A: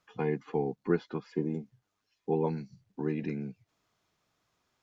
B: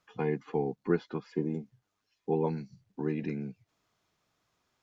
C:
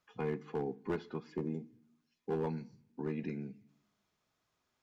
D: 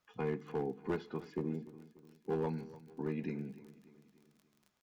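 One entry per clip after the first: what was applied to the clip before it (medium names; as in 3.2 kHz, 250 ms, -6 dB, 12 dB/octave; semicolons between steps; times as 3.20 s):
no audible change
hard clipper -23 dBFS, distortion -14 dB; on a send at -13 dB: reverberation RT60 0.65 s, pre-delay 3 ms; on the sum: trim -5 dB
crackle 27 per s -50 dBFS; feedback delay 294 ms, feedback 51%, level -18 dB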